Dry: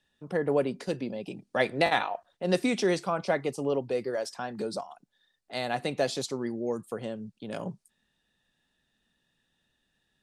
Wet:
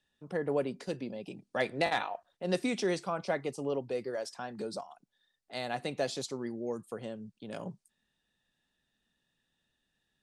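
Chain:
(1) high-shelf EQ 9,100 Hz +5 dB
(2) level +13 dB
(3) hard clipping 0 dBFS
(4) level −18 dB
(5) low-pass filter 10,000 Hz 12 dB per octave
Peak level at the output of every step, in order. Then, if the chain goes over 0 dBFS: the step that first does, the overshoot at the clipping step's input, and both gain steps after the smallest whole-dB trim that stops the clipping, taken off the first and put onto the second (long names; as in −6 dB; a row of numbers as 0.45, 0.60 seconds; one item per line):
−9.5, +3.5, 0.0, −18.0, −17.5 dBFS
step 2, 3.5 dB
step 2 +9 dB, step 4 −14 dB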